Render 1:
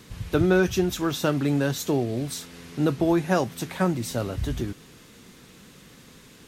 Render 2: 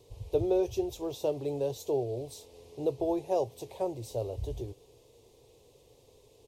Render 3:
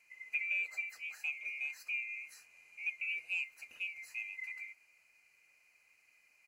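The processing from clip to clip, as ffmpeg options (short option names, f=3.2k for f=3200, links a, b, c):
-af "firequalizer=gain_entry='entry(120,0);entry(180,-21);entry(420,7);entry(950,-2);entry(1400,-28);entry(2500,-9);entry(3900,-6)':delay=0.05:min_phase=1,volume=-7.5dB"
-af "afftfilt=real='real(if(lt(b,920),b+92*(1-2*mod(floor(b/92),2)),b),0)':imag='imag(if(lt(b,920),b+92*(1-2*mod(floor(b/92),2)),b),0)':win_size=2048:overlap=0.75,volume=-9dB"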